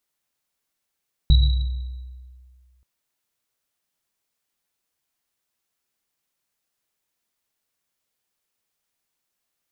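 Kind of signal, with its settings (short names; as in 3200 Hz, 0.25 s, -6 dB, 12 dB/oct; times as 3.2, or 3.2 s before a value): Risset drum length 1.53 s, pitch 63 Hz, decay 1.94 s, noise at 3900 Hz, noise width 130 Hz, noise 15%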